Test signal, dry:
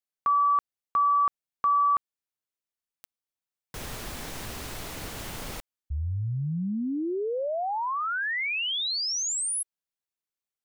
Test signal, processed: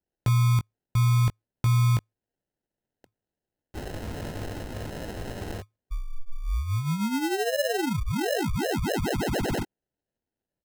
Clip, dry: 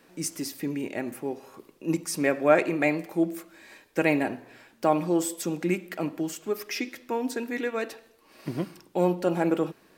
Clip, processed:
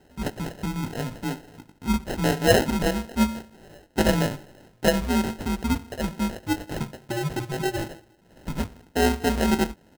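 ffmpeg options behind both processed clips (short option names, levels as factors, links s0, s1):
-filter_complex "[0:a]afreqshift=-110,asplit=2[s0][s1];[s1]adelay=19,volume=0.447[s2];[s0][s2]amix=inputs=2:normalize=0,acrusher=samples=38:mix=1:aa=0.000001,volume=1.19"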